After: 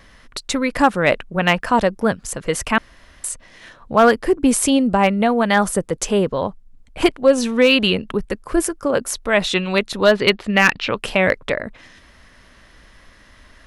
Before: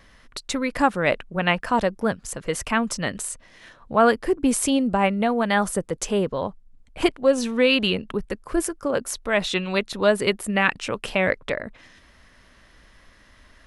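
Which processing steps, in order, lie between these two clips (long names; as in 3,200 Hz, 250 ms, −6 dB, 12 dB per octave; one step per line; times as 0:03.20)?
0:10.06–0:10.98: drawn EQ curve 540 Hz 0 dB, 4,300 Hz +5 dB, 9,700 Hz −28 dB
gain into a clipping stage and back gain 9.5 dB
0:02.78–0:03.24: fill with room tone
level +5 dB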